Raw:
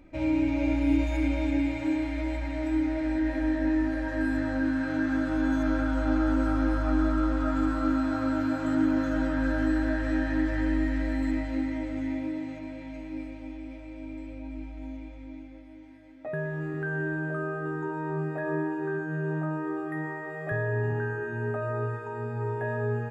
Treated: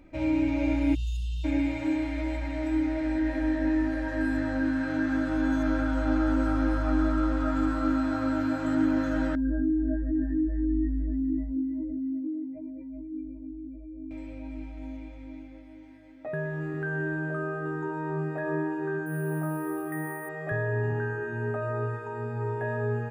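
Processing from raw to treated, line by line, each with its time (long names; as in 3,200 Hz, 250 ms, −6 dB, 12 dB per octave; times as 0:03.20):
0:00.95–0:01.44: time-frequency box erased 210–2,600 Hz
0:09.35–0:14.11: expanding power law on the bin magnitudes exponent 2.5
0:19.06–0:20.29: bad sample-rate conversion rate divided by 4×, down filtered, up hold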